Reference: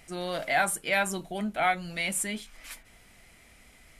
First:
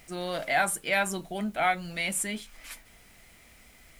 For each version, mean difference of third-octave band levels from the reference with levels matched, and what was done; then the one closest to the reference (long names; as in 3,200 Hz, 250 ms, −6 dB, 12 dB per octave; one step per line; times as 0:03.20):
1.0 dB: background noise white −64 dBFS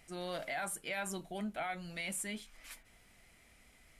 3.0 dB: brickwall limiter −22 dBFS, peak gain reduction 9 dB
level −7.5 dB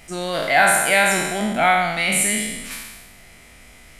5.5 dB: peak hold with a decay on every bin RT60 1.25 s
level +7 dB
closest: first